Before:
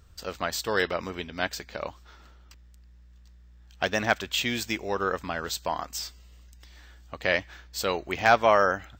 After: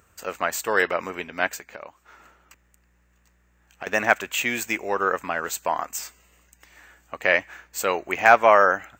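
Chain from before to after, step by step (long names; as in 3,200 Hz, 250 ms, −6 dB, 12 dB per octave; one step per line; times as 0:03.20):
high-pass filter 490 Hz 6 dB per octave
flat-topped bell 4,200 Hz −12 dB 1 octave
0:01.56–0:03.87: downward compressor 2.5 to 1, threshold −47 dBFS, peak gain reduction 16 dB
level +6.5 dB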